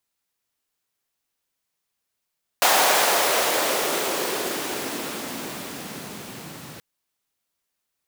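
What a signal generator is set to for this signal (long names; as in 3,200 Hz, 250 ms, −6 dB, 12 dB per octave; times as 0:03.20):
filter sweep on noise pink, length 4.18 s highpass, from 720 Hz, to 140 Hz, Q 1.8, exponential, gain ramp −25 dB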